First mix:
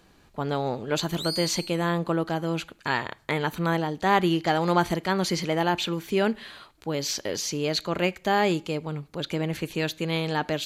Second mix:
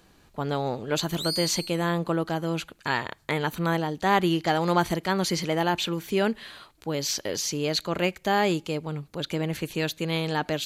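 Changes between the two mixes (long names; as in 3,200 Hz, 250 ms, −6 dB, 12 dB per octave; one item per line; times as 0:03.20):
speech: send −6.5 dB
master: add high-shelf EQ 6,300 Hz +4.5 dB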